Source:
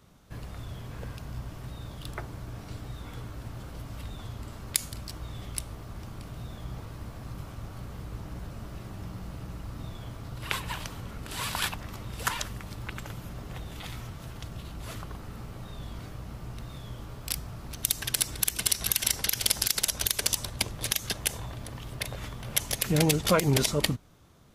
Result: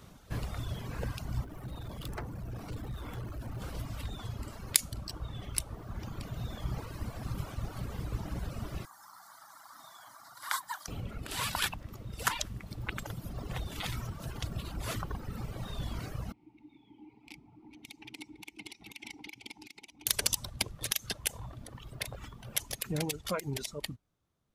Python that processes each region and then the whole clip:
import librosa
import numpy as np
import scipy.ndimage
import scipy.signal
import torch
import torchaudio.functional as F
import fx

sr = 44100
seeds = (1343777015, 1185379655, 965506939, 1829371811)

y = fx.chain(x, sr, fx.peak_eq(hz=5200.0, db=-6.0, octaves=2.7),
    fx.clip_hard(threshold_db=-38.0), at=(1.44, 3.62))
y = fx.chain(y, sr, fx.highpass(hz=840.0, slope=12),
    fx.fixed_phaser(hz=1100.0, stages=4), at=(8.85, 10.88))
y = fx.chain(y, sr, fx.vowel_filter(vowel='u'),
    fx.peak_eq(hz=1100.0, db=-10.5, octaves=0.46), at=(16.32, 20.07))
y = fx.dereverb_blind(y, sr, rt60_s=1.8)
y = fx.rider(y, sr, range_db=10, speed_s=2.0)
y = y * librosa.db_to_amplitude(-4.5)